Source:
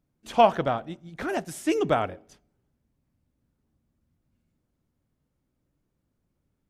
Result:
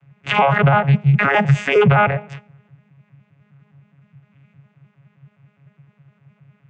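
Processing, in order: arpeggiated vocoder bare fifth, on C#3, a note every 0.103 s; EQ curve 160 Hz 0 dB, 250 Hz -21 dB, 550 Hz -6 dB, 2500 Hz +11 dB, 4500 Hz -10 dB; compressor, threshold -27 dBFS, peak gain reduction 10 dB; maximiser +30.5 dB; gain -5 dB

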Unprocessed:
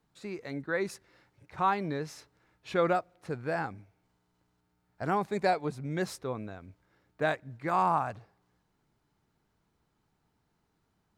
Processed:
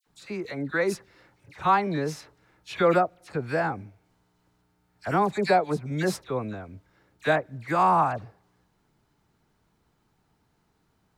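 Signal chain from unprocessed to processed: dispersion lows, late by 64 ms, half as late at 1900 Hz; gain +6 dB

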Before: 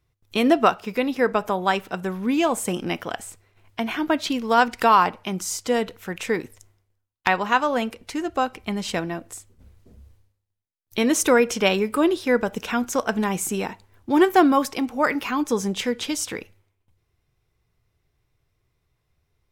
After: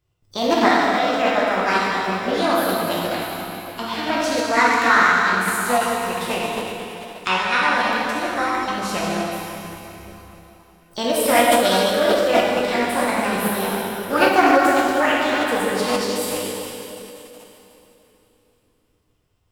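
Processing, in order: plate-style reverb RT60 3.4 s, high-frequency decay 0.9×, DRR -6.5 dB; formant shift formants +6 st; Doppler distortion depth 0.13 ms; gain -4 dB

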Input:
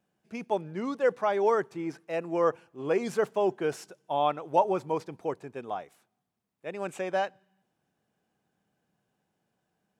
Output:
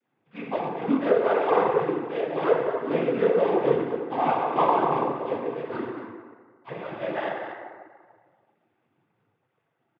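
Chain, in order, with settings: CVSD 16 kbps; chorus 0.76 Hz, delay 17 ms, depth 6.2 ms; 5.63–6.68 ring modulator 430 Hz; on a send: loudspeakers at several distances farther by 34 m -11 dB, 80 m -11 dB; on the sum: FDN reverb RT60 1.7 s, low-frequency decay 0.85×, high-frequency decay 0.35×, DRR -6 dB; noise vocoder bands 16

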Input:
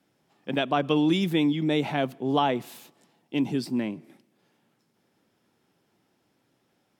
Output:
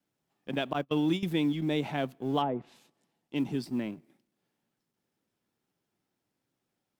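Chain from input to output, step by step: G.711 law mismatch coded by A; 0.73–1.23 gate -23 dBFS, range -31 dB; 2.41–3.36 treble ducked by the level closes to 870 Hz, closed at -21.5 dBFS; low shelf 140 Hz +4.5 dB; gain -5 dB

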